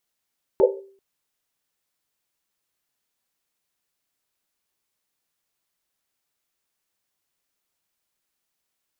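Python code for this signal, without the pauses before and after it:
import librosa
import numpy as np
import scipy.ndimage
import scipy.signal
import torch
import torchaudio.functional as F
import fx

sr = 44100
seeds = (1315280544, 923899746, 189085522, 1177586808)

y = fx.risset_drum(sr, seeds[0], length_s=0.39, hz=390.0, decay_s=0.54, noise_hz=500.0, noise_width_hz=120.0, noise_pct=70)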